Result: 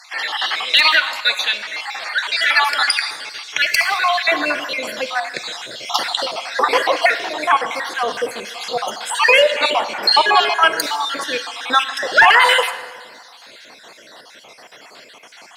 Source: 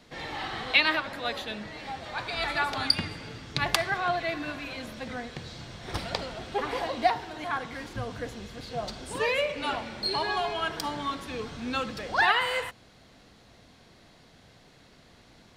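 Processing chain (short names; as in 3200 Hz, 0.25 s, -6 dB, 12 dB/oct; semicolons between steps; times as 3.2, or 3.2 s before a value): random spectral dropouts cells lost 47%; HPF 1300 Hz 12 dB/oct, from 4.28 s 580 Hz; one-sided clip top -17.5 dBFS, bottom -13 dBFS; plate-style reverb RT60 1.6 s, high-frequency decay 0.75×, DRR 12.5 dB; maximiser +20.5 dB; gain -1 dB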